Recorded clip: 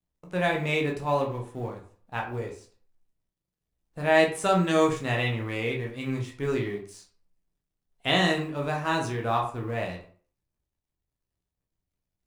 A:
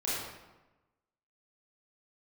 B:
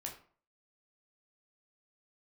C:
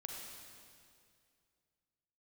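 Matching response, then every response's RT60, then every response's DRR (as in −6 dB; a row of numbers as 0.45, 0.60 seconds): B; 1.1, 0.45, 2.3 seconds; −9.0, 0.0, −0.5 decibels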